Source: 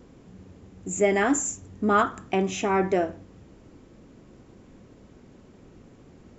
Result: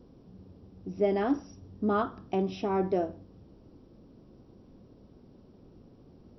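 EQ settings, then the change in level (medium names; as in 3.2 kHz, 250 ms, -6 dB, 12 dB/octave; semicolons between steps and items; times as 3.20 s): brick-wall FIR low-pass 5.8 kHz; peaking EQ 2 kHz -13.5 dB 1.3 oct; -3.5 dB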